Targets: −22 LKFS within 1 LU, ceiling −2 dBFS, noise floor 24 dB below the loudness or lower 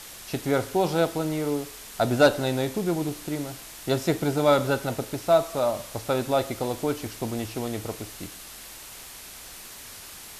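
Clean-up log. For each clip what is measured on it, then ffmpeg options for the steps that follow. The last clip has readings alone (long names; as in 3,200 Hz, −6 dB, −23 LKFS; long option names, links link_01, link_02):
background noise floor −43 dBFS; target noise floor −50 dBFS; integrated loudness −26.0 LKFS; sample peak −9.0 dBFS; target loudness −22.0 LKFS
→ -af "afftdn=noise_reduction=7:noise_floor=-43"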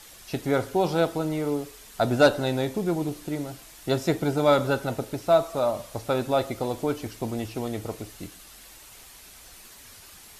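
background noise floor −48 dBFS; target noise floor −50 dBFS
→ -af "afftdn=noise_reduction=6:noise_floor=-48"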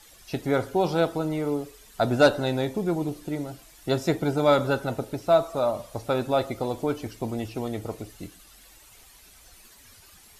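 background noise floor −53 dBFS; integrated loudness −26.0 LKFS; sample peak −9.0 dBFS; target loudness −22.0 LKFS
→ -af "volume=4dB"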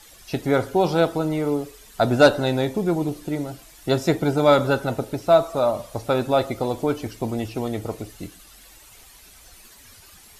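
integrated loudness −22.0 LKFS; sample peak −5.0 dBFS; background noise floor −49 dBFS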